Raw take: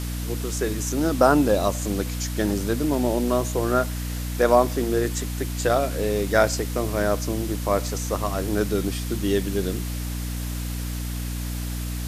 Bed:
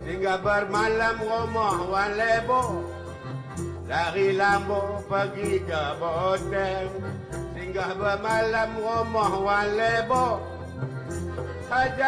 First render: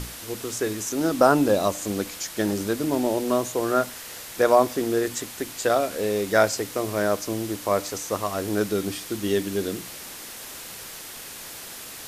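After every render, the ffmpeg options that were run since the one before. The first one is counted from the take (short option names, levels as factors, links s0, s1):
-af "bandreject=f=60:t=h:w=6,bandreject=f=120:t=h:w=6,bandreject=f=180:t=h:w=6,bandreject=f=240:t=h:w=6,bandreject=f=300:t=h:w=6"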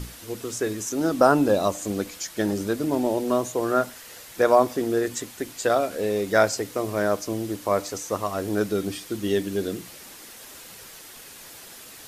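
-af "afftdn=nr=6:nf=-39"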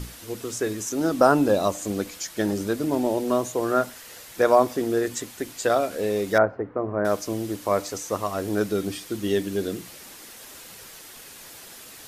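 -filter_complex "[0:a]asettb=1/sr,asplit=3[s0][s1][s2];[s0]atrim=end=6.384[s3];[s1]atrim=start=6.38:end=7.05,asetpts=PTS-STARTPTS,afade=t=in:d=0.004:c=qsin,afade=t=out:st=0.666:d=0.004:c=qsin,lowpass=f=1500:w=0.5412,lowpass=f=1500:w=1.3066[s4];[s2]atrim=start=7.046[s5];[s3][s4]acrossfade=d=0.004:c1=hsin:c2=qsin[s6];[s6][s5]acrossfade=d=0.004:c1=qsin:c2=hsin"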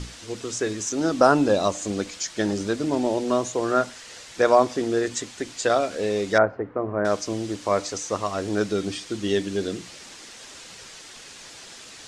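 -af "lowpass=f=7900:w=0.5412,lowpass=f=7900:w=1.3066,equalizer=f=4900:w=0.41:g=4"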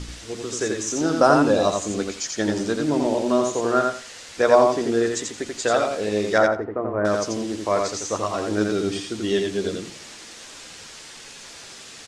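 -filter_complex "[0:a]asplit=2[s0][s1];[s1]adelay=13,volume=0.251[s2];[s0][s2]amix=inputs=2:normalize=0,asplit=2[s3][s4];[s4]aecho=0:1:86|172|258:0.668|0.134|0.0267[s5];[s3][s5]amix=inputs=2:normalize=0"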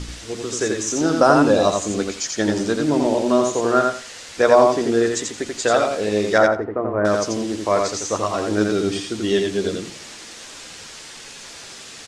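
-af "volume=1.41,alimiter=limit=0.794:level=0:latency=1"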